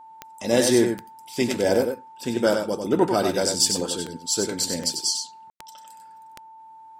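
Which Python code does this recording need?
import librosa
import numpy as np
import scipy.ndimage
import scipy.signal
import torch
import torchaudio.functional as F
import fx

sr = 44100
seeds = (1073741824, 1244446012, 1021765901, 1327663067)

y = fx.fix_declick_ar(x, sr, threshold=10.0)
y = fx.notch(y, sr, hz=890.0, q=30.0)
y = fx.fix_ambience(y, sr, seeds[0], print_start_s=6.39, print_end_s=6.89, start_s=5.5, end_s=5.6)
y = fx.fix_echo_inverse(y, sr, delay_ms=95, level_db=-6.0)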